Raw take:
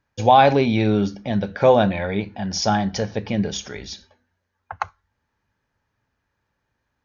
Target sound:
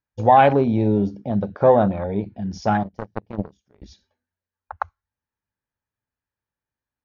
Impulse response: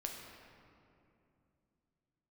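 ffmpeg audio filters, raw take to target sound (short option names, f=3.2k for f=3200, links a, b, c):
-filter_complex "[0:a]afwtdn=0.0447,asettb=1/sr,asplit=3[a][b][c];[a]atrim=end=2.834[d];[b]atrim=start=2.83:end=3.82,asetpts=PTS-STARTPTS,afade=t=in:d=0.004:c=qsin,afade=t=out:st=0.986:d=0.004:c=qsin,aeval=exprs='0.299*(cos(1*acos(clip(val(0)/0.299,-1,1)))-cos(1*PI/2))+0.0944*(cos(3*acos(clip(val(0)/0.299,-1,1)))-cos(3*PI/2))':c=same[e];[c]atrim=start=3.816[f];[d][e]acrossfade=d=0.004:c1=hsin:c2=qsin[g];[g][f]acrossfade=d=0.004:c1=qsin:c2=hsin"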